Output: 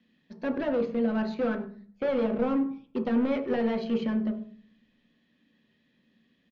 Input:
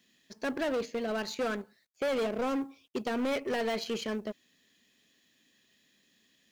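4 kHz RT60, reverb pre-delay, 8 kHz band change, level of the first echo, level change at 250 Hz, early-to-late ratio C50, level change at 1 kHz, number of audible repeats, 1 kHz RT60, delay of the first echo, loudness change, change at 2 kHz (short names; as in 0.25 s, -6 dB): 0.45 s, 3 ms, under -20 dB, -20.0 dB, +8.0 dB, 11.0 dB, 0.0 dB, 1, 0.45 s, 99 ms, +4.5 dB, -2.0 dB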